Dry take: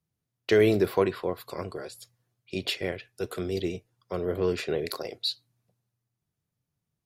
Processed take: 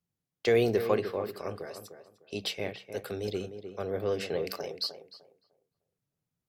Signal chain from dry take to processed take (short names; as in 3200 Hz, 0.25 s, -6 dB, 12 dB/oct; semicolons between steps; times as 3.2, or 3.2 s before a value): notches 60/120/180 Hz; tape echo 0.33 s, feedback 26%, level -8 dB, low-pass 1300 Hz; speed mistake 44.1 kHz file played as 48 kHz; gain -3.5 dB